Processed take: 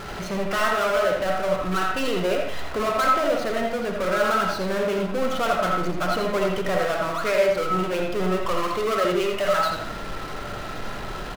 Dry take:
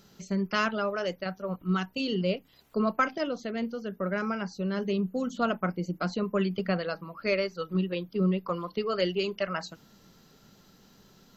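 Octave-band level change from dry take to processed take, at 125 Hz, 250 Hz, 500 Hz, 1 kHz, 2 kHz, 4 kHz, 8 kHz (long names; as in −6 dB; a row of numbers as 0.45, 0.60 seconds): +0.5 dB, +1.0 dB, +8.5 dB, +10.5 dB, +7.5 dB, +6.5 dB, can't be measured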